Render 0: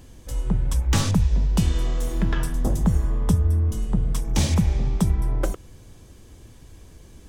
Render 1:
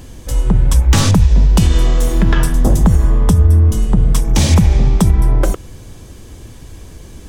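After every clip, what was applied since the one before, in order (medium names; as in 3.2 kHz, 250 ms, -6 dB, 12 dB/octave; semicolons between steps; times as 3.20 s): loudness maximiser +12.5 dB; trim -1 dB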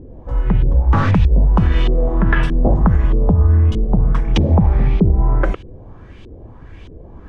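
LFO low-pass saw up 1.6 Hz 370–3300 Hz; trim -3 dB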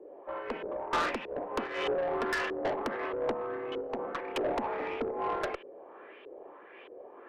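mistuned SSB +51 Hz 340–2900 Hz; valve stage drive 24 dB, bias 0.25; random flutter of the level, depth 60%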